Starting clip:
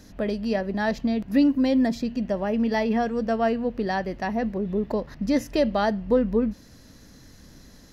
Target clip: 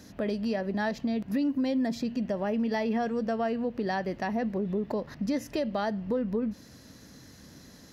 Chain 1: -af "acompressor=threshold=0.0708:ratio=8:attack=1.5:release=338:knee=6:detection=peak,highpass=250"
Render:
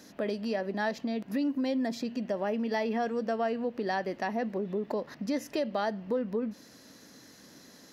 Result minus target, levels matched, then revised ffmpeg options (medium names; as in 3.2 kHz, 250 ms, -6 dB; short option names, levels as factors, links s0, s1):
125 Hz band -4.0 dB
-af "acompressor=threshold=0.0708:ratio=8:attack=1.5:release=338:knee=6:detection=peak,highpass=86"